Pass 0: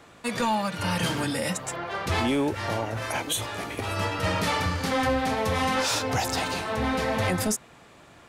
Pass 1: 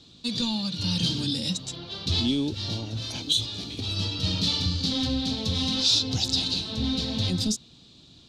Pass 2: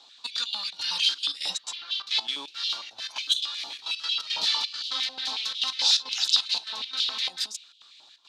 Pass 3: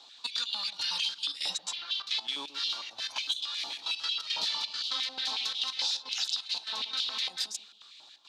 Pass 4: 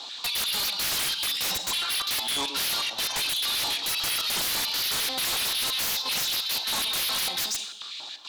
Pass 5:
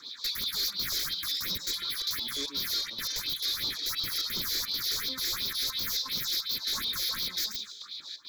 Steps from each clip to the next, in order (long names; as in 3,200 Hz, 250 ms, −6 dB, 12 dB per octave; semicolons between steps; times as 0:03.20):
drawn EQ curve 260 Hz 0 dB, 580 Hz −16 dB, 2,000 Hz −20 dB, 3,900 Hz +12 dB, 11,000 Hz −16 dB; level +1.5 dB
gate pattern "xxx.x.xx.x" 171 BPM −12 dB; high-pass on a step sequencer 11 Hz 830–3,000 Hz
downward compressor 10 to 1, threshold −28 dBFS, peak gain reduction 13 dB; delay with a low-pass on its return 134 ms, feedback 36%, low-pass 830 Hz, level −10.5 dB
gain into a clipping stage and back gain 26.5 dB; four-comb reverb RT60 0.65 s, combs from 32 ms, DRR 15 dB; sine wavefolder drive 11 dB, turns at −24 dBFS
all-pass phaser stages 4, 2.8 Hz, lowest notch 150–1,800 Hz; phaser with its sweep stopped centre 2,800 Hz, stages 6; floating-point word with a short mantissa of 4 bits